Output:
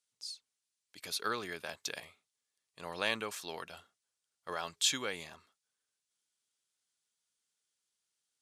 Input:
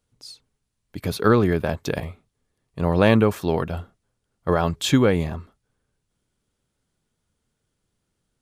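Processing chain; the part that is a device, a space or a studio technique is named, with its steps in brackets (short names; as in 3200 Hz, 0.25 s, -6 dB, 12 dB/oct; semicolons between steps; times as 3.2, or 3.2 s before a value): piezo pickup straight into a mixer (LPF 7300 Hz 12 dB/oct; differentiator); gain +2 dB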